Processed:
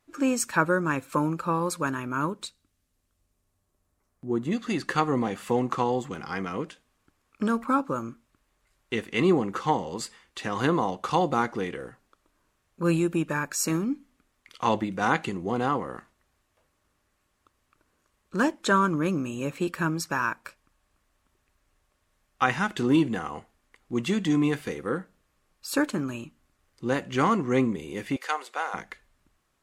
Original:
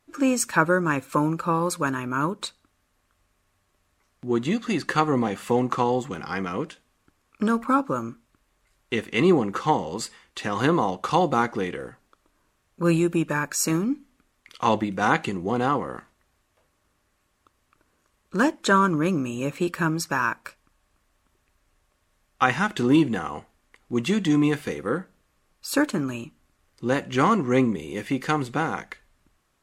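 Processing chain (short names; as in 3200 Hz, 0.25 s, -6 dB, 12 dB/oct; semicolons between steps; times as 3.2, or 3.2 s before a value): 2.41–4.51 bell 850 Hz -> 3900 Hz -11.5 dB 2.6 oct; 28.16–28.74 HPF 550 Hz 24 dB/oct; gain -3 dB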